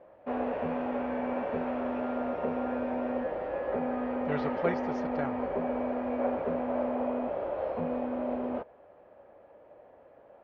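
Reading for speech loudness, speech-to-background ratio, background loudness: -37.0 LUFS, -4.5 dB, -32.5 LUFS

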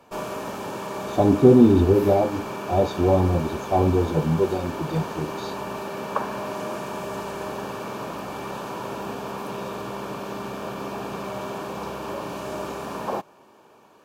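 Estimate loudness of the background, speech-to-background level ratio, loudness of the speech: -32.0 LUFS, 11.5 dB, -20.5 LUFS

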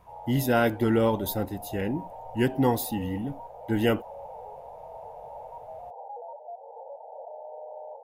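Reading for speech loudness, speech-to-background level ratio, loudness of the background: -27.0 LUFS, 15.5 dB, -42.5 LUFS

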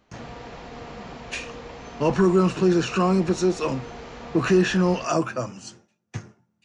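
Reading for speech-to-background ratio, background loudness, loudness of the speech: 17.0 dB, -39.5 LUFS, -22.5 LUFS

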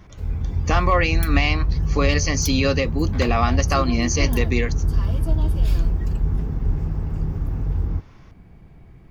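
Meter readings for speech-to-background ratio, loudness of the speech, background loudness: 1.5 dB, -22.5 LUFS, -24.0 LUFS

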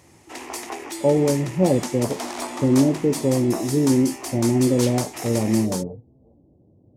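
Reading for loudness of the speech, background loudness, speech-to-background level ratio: -21.5 LUFS, -31.0 LUFS, 9.5 dB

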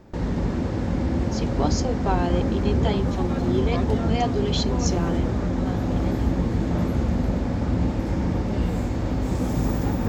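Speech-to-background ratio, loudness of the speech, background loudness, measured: -4.5 dB, -29.0 LUFS, -24.5 LUFS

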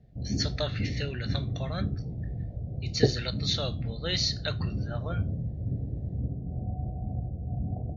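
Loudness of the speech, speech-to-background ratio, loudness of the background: -33.5 LUFS, 0.0 dB, -33.5 LUFS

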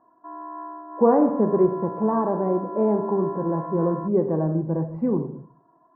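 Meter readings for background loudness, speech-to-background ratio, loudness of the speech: -36.0 LUFS, 13.0 dB, -23.0 LUFS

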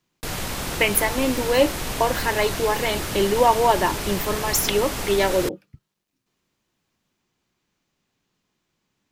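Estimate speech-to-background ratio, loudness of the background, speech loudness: 6.0 dB, -28.0 LUFS, -22.0 LUFS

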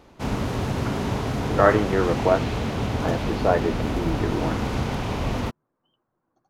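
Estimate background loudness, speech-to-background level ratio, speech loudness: -27.0 LUFS, 2.5 dB, -24.5 LUFS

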